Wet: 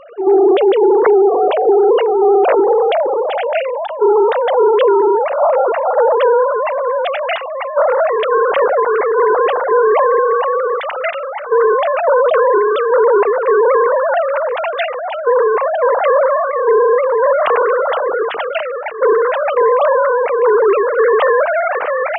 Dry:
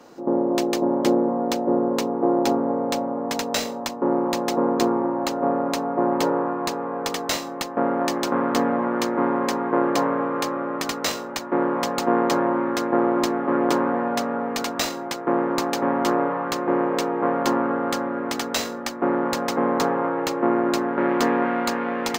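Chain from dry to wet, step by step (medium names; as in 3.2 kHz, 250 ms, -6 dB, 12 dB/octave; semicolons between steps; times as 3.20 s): formants replaced by sine waves; loudness maximiser +14 dB; trim -3.5 dB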